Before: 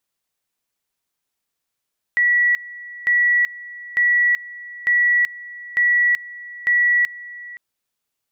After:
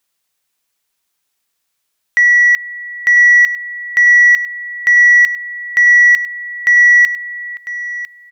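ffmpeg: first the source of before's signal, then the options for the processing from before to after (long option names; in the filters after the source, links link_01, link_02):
-f lavfi -i "aevalsrc='pow(10,(-13-19.5*gte(mod(t,0.9),0.38))/20)*sin(2*PI*1940*t)':duration=5.4:sample_rate=44100"
-af "tiltshelf=frequency=850:gain=-3.5,acontrast=53,aecho=1:1:1000:0.2"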